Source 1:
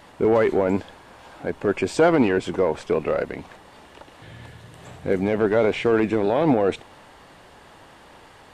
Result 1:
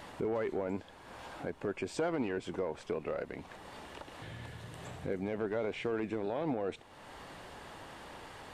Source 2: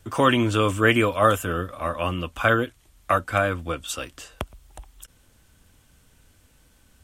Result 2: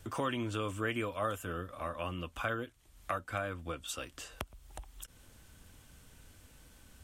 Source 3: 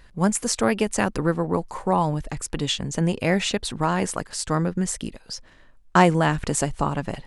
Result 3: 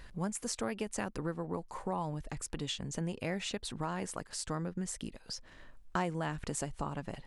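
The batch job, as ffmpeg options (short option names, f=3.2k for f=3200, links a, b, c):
-af "acompressor=threshold=-45dB:ratio=2"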